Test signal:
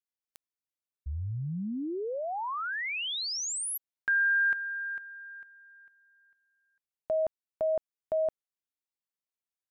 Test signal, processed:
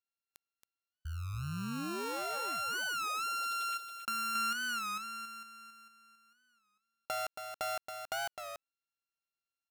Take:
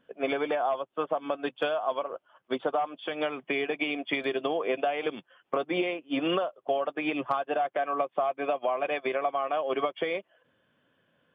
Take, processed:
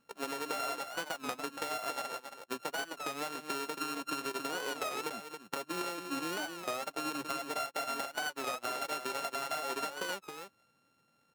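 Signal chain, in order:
samples sorted by size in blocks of 32 samples
downward compressor, threshold −30 dBFS
on a send: single-tap delay 275 ms −7.5 dB
on the sum: wow of a warped record 33 1/3 rpm, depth 160 cents
level −4.5 dB

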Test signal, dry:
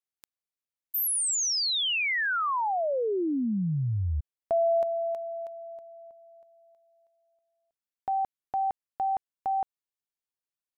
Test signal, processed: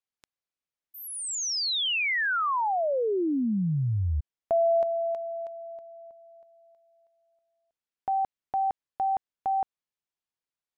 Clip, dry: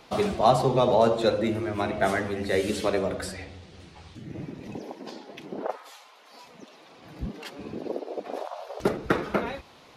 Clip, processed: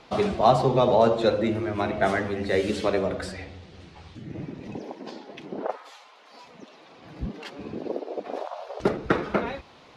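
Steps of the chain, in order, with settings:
high-frequency loss of the air 64 metres
level +1.5 dB

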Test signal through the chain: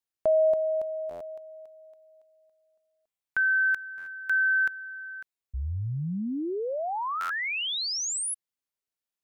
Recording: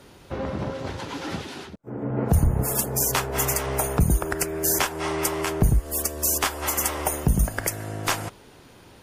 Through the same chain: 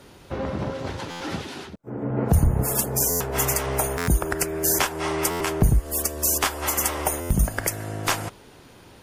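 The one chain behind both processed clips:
buffer that repeats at 0:01.10/0:03.10/0:03.97/0:05.30/0:07.20, samples 512, times 8
level +1 dB

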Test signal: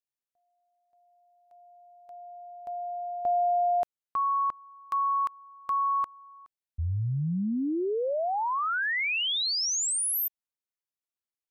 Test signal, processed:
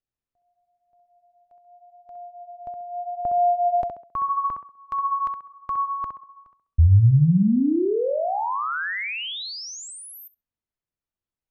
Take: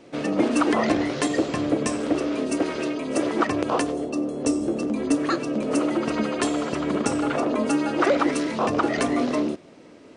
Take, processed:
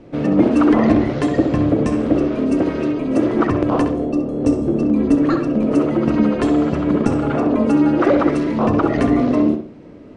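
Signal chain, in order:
RIAA equalisation playback
tape delay 65 ms, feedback 38%, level −5 dB, low-pass 2,600 Hz
level +1.5 dB

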